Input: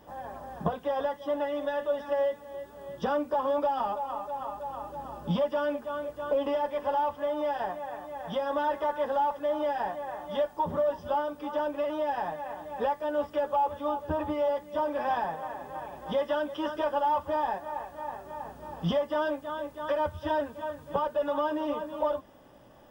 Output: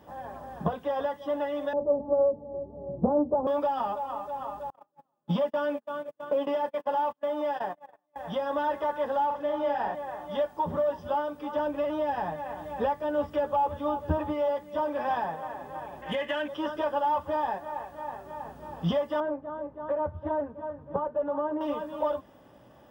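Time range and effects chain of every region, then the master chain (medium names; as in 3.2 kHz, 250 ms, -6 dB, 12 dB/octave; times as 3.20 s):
1.73–3.47 s: steep low-pass 820 Hz + bass shelf 460 Hz +9.5 dB + loudspeaker Doppler distortion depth 0.41 ms
4.70–8.16 s: high-pass 140 Hz 24 dB/octave + gate -35 dBFS, range -38 dB
9.26–9.95 s: treble shelf 8.1 kHz -10.5 dB + doubling 45 ms -4 dB
11.56–14.18 s: bass shelf 180 Hz +9.5 dB + tape noise reduction on one side only encoder only
16.02–16.48 s: median filter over 9 samples + compression 2.5:1, threshold -28 dBFS + high-order bell 2.3 kHz +13.5 dB 1.1 oct
19.20–21.61 s: low-pass 1 kHz + loudspeaker Doppler distortion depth 0.11 ms
whole clip: high-pass 57 Hz; tone controls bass +2 dB, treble -3 dB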